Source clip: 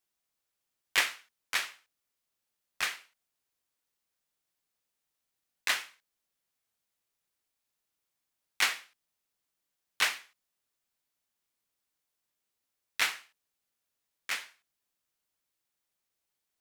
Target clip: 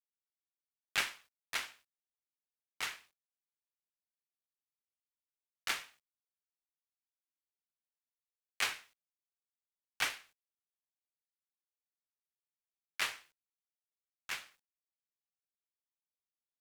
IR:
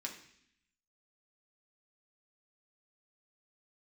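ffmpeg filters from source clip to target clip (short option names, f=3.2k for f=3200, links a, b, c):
-af "acrusher=bits=10:mix=0:aa=0.000001,aeval=exprs='val(0)*sin(2*PI*330*n/s)':c=same,volume=-3.5dB"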